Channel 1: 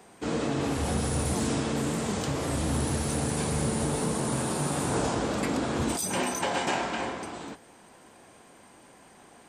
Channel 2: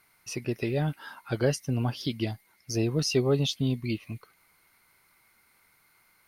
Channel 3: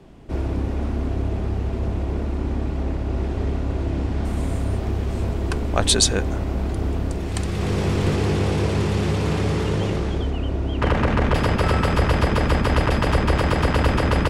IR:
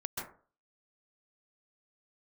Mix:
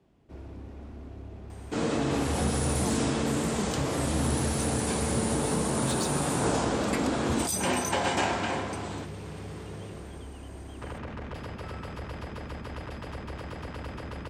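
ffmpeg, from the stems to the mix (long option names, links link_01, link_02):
-filter_complex "[0:a]bandreject=frequency=50:width_type=h:width=6,bandreject=frequency=100:width_type=h:width=6,bandreject=frequency=150:width_type=h:width=6,adelay=1500,volume=1dB[link_01];[2:a]highpass=51,asoftclip=type=tanh:threshold=-11.5dB,volume=-17.5dB[link_02];[link_01][link_02]amix=inputs=2:normalize=0"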